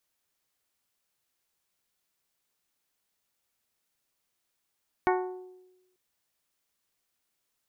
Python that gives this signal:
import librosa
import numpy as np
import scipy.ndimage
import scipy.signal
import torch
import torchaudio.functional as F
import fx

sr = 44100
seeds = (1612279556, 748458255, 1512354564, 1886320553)

y = fx.strike_glass(sr, length_s=0.89, level_db=-22.5, body='bell', hz=368.0, decay_s=1.04, tilt_db=2.0, modes=7)